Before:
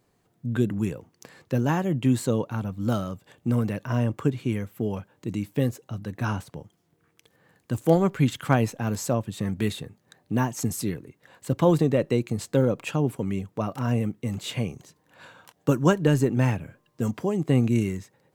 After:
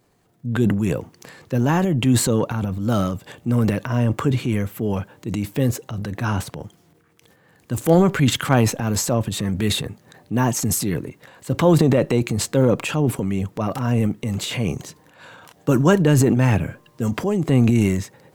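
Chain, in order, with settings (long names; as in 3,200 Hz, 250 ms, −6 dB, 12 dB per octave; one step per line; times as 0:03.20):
transient designer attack −3 dB, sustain +9 dB
level +5 dB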